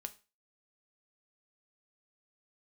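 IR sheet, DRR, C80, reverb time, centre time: 7.5 dB, 23.5 dB, 0.30 s, 4 ms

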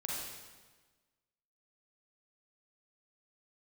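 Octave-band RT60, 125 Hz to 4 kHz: 1.5, 1.5, 1.4, 1.3, 1.3, 1.2 seconds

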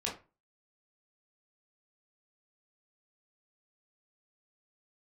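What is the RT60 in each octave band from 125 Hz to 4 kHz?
0.40, 0.35, 0.30, 0.30, 0.25, 0.20 seconds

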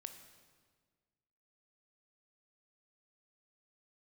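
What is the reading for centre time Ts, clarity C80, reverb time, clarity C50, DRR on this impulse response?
20 ms, 10.5 dB, 1.6 s, 9.0 dB, 7.0 dB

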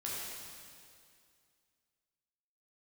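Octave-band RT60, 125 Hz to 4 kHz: 2.5, 2.4, 2.3, 2.2, 2.2, 2.2 seconds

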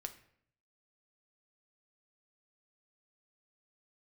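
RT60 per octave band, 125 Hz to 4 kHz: 0.90, 0.75, 0.70, 0.60, 0.60, 0.50 seconds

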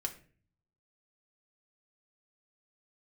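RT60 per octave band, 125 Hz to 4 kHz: 1.0, 0.75, 0.50, 0.35, 0.45, 0.30 seconds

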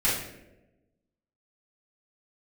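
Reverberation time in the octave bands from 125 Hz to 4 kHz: 1.2, 1.3, 1.2, 0.75, 0.75, 0.55 seconds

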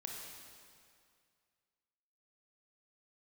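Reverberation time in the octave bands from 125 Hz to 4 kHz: 2.2, 2.2, 2.2, 2.2, 2.1, 2.0 seconds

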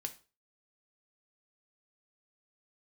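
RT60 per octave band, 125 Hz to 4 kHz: 0.35, 0.35, 0.35, 0.35, 0.30, 0.30 seconds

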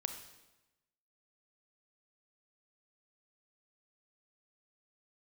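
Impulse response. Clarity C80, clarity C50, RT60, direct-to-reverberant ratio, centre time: 10.0 dB, 8.0 dB, 1.0 s, 6.5 dB, 20 ms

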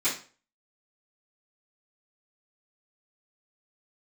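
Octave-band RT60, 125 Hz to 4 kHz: 0.40, 0.40, 0.40, 0.35, 0.35, 0.35 seconds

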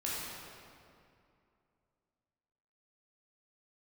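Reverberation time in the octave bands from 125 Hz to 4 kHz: 2.8, 2.8, 2.6, 2.5, 2.1, 1.6 seconds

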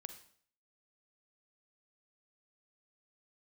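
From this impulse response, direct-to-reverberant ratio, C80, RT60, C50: 8.0 dB, 13.0 dB, 0.55 s, 9.5 dB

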